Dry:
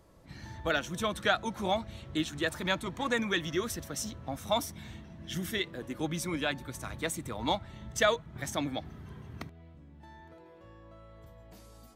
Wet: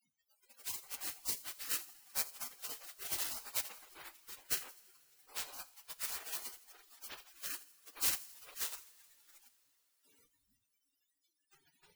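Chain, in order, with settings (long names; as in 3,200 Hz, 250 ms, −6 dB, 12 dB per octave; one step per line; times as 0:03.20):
spike at every zero crossing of −20.5 dBFS
gate on every frequency bin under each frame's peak −30 dB weak
noise reduction from a noise print of the clip's start 23 dB
delay with a high-pass on its return 83 ms, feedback 53%, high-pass 4,300 Hz, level −17.5 dB
coupled-rooms reverb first 0.41 s, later 4.5 s, from −18 dB, DRR 14.5 dB
level +5.5 dB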